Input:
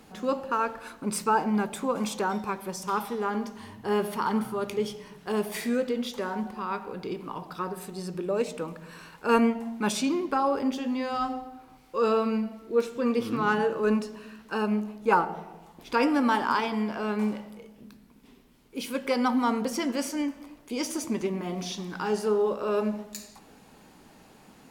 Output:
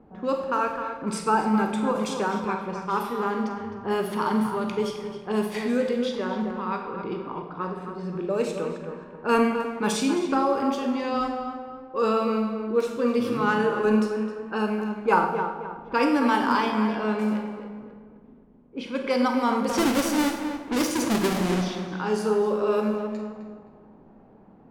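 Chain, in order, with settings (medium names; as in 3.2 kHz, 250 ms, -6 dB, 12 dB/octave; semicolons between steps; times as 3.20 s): 19.69–21.62 s: square wave that keeps the level; level-controlled noise filter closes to 710 Hz, open at -23.5 dBFS; on a send: tape echo 262 ms, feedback 42%, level -6.5 dB, low-pass 2.1 kHz; on the sum: Schroeder reverb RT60 0.71 s, combs from 33 ms, DRR 5.5 dB; trim +1 dB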